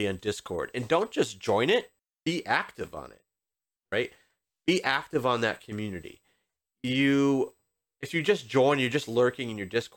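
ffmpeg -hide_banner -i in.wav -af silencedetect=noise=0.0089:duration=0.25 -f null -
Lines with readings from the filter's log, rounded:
silence_start: 1.85
silence_end: 2.26 | silence_duration: 0.42
silence_start: 3.13
silence_end: 3.92 | silence_duration: 0.80
silence_start: 4.08
silence_end: 4.68 | silence_duration: 0.60
silence_start: 6.14
silence_end: 6.84 | silence_duration: 0.70
silence_start: 7.48
silence_end: 8.03 | silence_duration: 0.55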